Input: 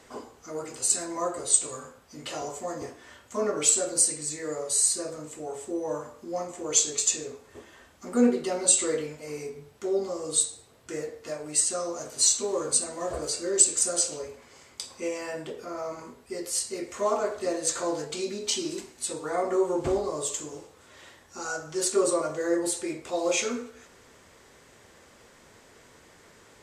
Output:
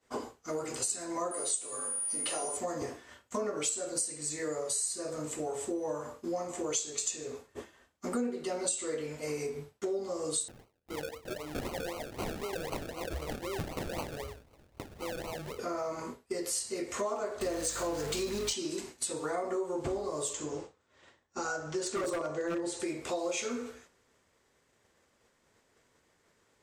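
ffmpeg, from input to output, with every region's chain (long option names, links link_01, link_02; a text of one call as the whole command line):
ffmpeg -i in.wav -filter_complex "[0:a]asettb=1/sr,asplit=3[link_01][link_02][link_03];[link_01]atrim=end=1.314[link_04];[link_02]atrim=start=1.31:end=2.57,asetpts=PTS-STARTPTS,afade=type=in:duration=0.004:curve=qsin,afade=type=out:start_time=1.256:duration=0.004:curve=qsin,highpass=220,aeval=exprs='val(0)+0.02*sin(2*PI*9500*n/s)':channel_layout=same,bandreject=frequency=50:width_type=h:width=6,bandreject=frequency=100:width_type=h:width=6,bandreject=frequency=150:width_type=h:width=6,bandreject=frequency=200:width_type=h:width=6,bandreject=frequency=250:width_type=h:width=6,bandreject=frequency=300:width_type=h:width=6,bandreject=frequency=350:width_type=h:width=6[link_05];[link_03]atrim=start=2.566[link_06];[link_04][link_05]acrossfade=duration=0.004:curve1=hsin:curve2=qsin[link_07];[link_07][link_06]acrossfade=duration=0.004:curve1=qsin:curve2=hsin,asettb=1/sr,asplit=3[link_08][link_09][link_10];[link_08]atrim=end=10.484[link_11];[link_09]atrim=start=10.48:end=15.59,asetpts=PTS-STARTPTS,afade=type=in:duration=0.004:curve=qsin,afade=type=out:start_time=5.106:duration=0.004:curve=qsin,asubboost=boost=11.5:cutoff=78,acrusher=samples=35:mix=1:aa=0.000001:lfo=1:lforange=21:lforate=3.9,acompressor=threshold=-43dB:ratio=2.5:attack=3.2:release=140:knee=1:detection=peak[link_12];[link_10]atrim=start=15.586[link_13];[link_11][link_12]acrossfade=duration=0.004:curve1=hsin:curve2=qsin[link_14];[link_14][link_13]acrossfade=duration=0.004:curve1=qsin:curve2=hsin,asettb=1/sr,asplit=3[link_15][link_16][link_17];[link_15]atrim=end=17.414[link_18];[link_16]atrim=start=17.41:end=18.53,asetpts=PTS-STARTPTS,afade=type=in:duration=0.004:curve=qsin,afade=type=out:start_time=1.116:duration=0.004:curve=qsin,aeval=exprs='val(0)+0.5*0.0224*sgn(val(0))':channel_layout=same,aeval=exprs='val(0)+0.00708*(sin(2*PI*50*n/s)+sin(2*PI*2*50*n/s)/2+sin(2*PI*3*50*n/s)/3+sin(2*PI*4*50*n/s)/4+sin(2*PI*5*50*n/s)/5)':channel_layout=same[link_19];[link_17]atrim=start=18.526[link_20];[link_18][link_19]acrossfade=duration=0.004:curve1=hsin:curve2=qsin[link_21];[link_21][link_20]acrossfade=duration=0.004:curve1=qsin:curve2=hsin,asettb=1/sr,asplit=3[link_22][link_23][link_24];[link_22]atrim=end=20.334[link_25];[link_23]atrim=start=20.33:end=22.8,asetpts=PTS-STARTPTS,afade=type=in:duration=0.004:curve=qsin,afade=type=out:start_time=2.466:duration=0.004:curve=qsin,lowpass=frequency=8100:width=0.5412,lowpass=frequency=8100:width=1.3066,highshelf=frequency=3200:gain=-5.5,aeval=exprs='0.0841*(abs(mod(val(0)/0.0841+3,4)-2)-1)':channel_layout=same[link_26];[link_24]atrim=start=22.796[link_27];[link_25][link_26]acrossfade=duration=0.004:curve1=hsin:curve2=qsin[link_28];[link_28][link_27]acrossfade=duration=0.004:curve1=qsin:curve2=hsin,agate=range=-33dB:threshold=-41dB:ratio=3:detection=peak,acompressor=threshold=-38dB:ratio=5,volume=5.5dB" out.wav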